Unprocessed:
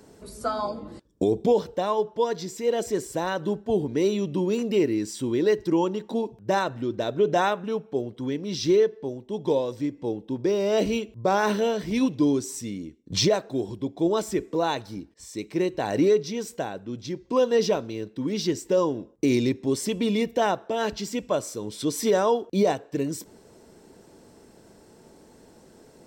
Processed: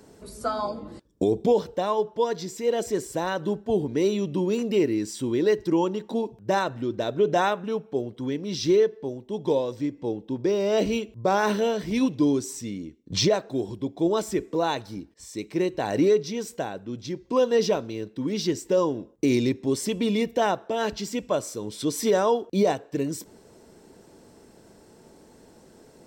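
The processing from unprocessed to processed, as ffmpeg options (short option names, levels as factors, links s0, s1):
-filter_complex "[0:a]asettb=1/sr,asplit=3[s0][s1][s2];[s0]atrim=end=9.624[s3];[s1]atrim=start=9.62:end=10.91,asetpts=PTS-STARTPTS,afade=t=in:d=0.004:c=qsin,afade=t=out:st=1.286:d=0.004:c=qsin,equalizer=f=11000:t=o:w=0.54:g=-5.5[s4];[s2]atrim=start=10.906[s5];[s3][s4]acrossfade=d=0.004:c1=hsin:c2=qsin[s6];[s6][s5]acrossfade=d=0.004:c1=qsin:c2=hsin,asettb=1/sr,asplit=3[s7][s8][s9];[s7]atrim=end=12.534[s10];[s8]atrim=start=12.53:end=13.48,asetpts=PTS-STARTPTS,afade=t=in:d=0.004:c=qsin,afade=t=out:st=0.946:d=0.004:c=qsin,equalizer=f=11000:w=1.3:g=-6.5[s11];[s9]atrim=start=13.476[s12];[s10][s11]acrossfade=d=0.004:c1=hsin:c2=qsin[s13];[s13][s12]acrossfade=d=0.004:c1=qsin:c2=hsin"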